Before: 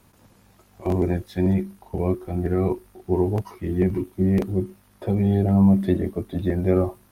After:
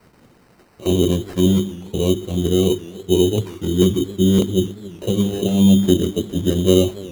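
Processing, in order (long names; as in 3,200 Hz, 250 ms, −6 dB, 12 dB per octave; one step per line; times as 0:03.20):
high-pass filter 110 Hz 6 dB per octave
flat-topped bell 1,100 Hz −12.5 dB
mains-hum notches 50/100/150/200/250/300/350/400 Hz
decimation without filtering 13×
feedback echo with a swinging delay time 282 ms, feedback 58%, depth 144 cents, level −20 dB
level +7.5 dB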